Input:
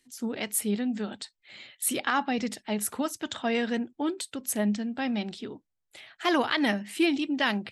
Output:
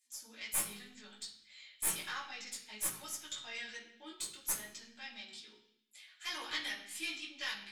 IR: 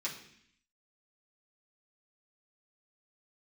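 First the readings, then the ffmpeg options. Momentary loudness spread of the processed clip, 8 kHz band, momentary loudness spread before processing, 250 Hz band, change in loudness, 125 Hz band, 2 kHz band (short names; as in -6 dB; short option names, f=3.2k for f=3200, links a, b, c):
16 LU, -4.0 dB, 11 LU, -27.5 dB, -11.0 dB, n/a, -10.5 dB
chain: -filter_complex "[0:a]aderivative,aeval=exprs='(tanh(14.1*val(0)+0.6)-tanh(0.6))/14.1':c=same,flanger=delay=17:depth=2.2:speed=0.62[a];[1:a]atrim=start_sample=2205,asetrate=42336,aresample=44100[b];[a][b]afir=irnorm=-1:irlink=0,volume=3dB"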